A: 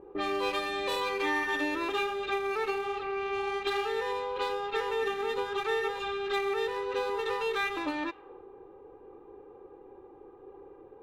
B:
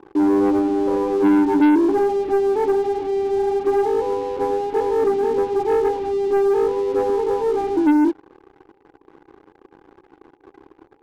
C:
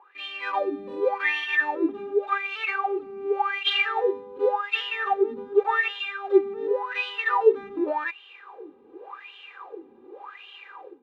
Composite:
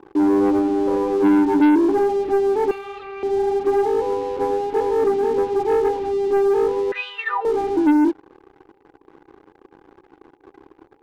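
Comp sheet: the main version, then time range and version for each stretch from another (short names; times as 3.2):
B
2.71–3.23 from A
6.92–7.45 from C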